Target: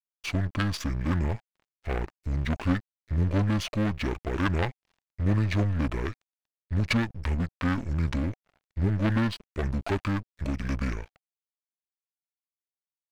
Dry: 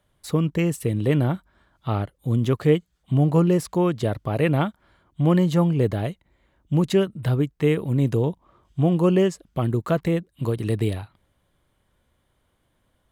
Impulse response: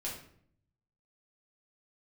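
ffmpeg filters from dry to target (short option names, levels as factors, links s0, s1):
-filter_complex "[0:a]aeval=exprs='if(lt(val(0),0),0.251*val(0),val(0))':c=same,acrossover=split=5300[s0][s1];[s0]crystalizer=i=6:c=0[s2];[s2][s1]amix=inputs=2:normalize=0,asetrate=26222,aresample=44100,atempo=1.68179,aeval=exprs='sgn(val(0))*max(abs(val(0))-0.00266,0)':c=same,aeval=exprs='(tanh(11.2*val(0)+0.8)-tanh(0.8))/11.2':c=same,bandreject=f=760:w=12,volume=2.51"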